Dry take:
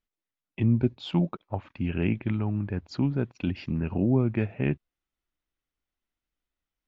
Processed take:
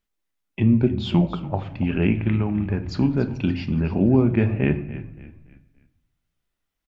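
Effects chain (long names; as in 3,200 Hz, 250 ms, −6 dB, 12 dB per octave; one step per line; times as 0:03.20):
echo with shifted repeats 286 ms, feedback 38%, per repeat −30 Hz, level −14.5 dB
on a send at −8.5 dB: convolution reverb RT60 0.65 s, pre-delay 5 ms
on the sum: level +5.5 dB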